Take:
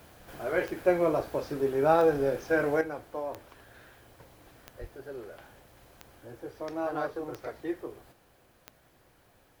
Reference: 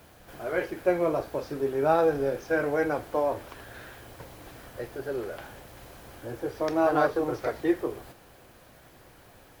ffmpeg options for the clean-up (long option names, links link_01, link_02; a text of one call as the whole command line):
ffmpeg -i in.wav -filter_complex "[0:a]adeclick=threshold=4,asplit=3[link_01][link_02][link_03];[link_01]afade=type=out:start_time=4.8:duration=0.02[link_04];[link_02]highpass=frequency=140:width=0.5412,highpass=frequency=140:width=1.3066,afade=type=in:start_time=4.8:duration=0.02,afade=type=out:start_time=4.92:duration=0.02[link_05];[link_03]afade=type=in:start_time=4.92:duration=0.02[link_06];[link_04][link_05][link_06]amix=inputs=3:normalize=0,asetnsamples=nb_out_samples=441:pad=0,asendcmd='2.81 volume volume 9dB',volume=0dB" out.wav